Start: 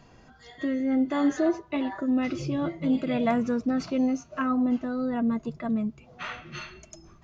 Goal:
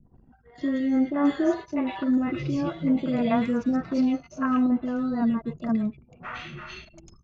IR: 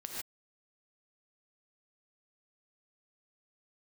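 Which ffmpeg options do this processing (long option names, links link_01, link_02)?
-filter_complex "[0:a]acrossover=split=540|2100[link_01][link_02][link_03];[link_02]adelay=40[link_04];[link_03]adelay=150[link_05];[link_01][link_04][link_05]amix=inputs=3:normalize=0,anlmdn=0.00398,acrossover=split=4100[link_06][link_07];[link_07]acompressor=threshold=-57dB:ratio=4:attack=1:release=60[link_08];[link_06][link_08]amix=inputs=2:normalize=0,volume=2.5dB"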